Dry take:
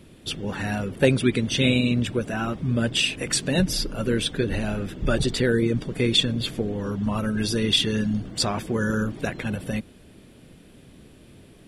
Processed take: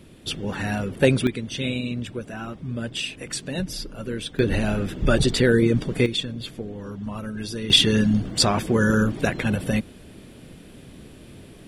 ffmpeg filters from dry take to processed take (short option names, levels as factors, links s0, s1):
-af "asetnsamples=n=441:p=0,asendcmd='1.27 volume volume -6.5dB;4.39 volume volume 3.5dB;6.06 volume volume -6.5dB;7.7 volume volume 5dB',volume=1.12"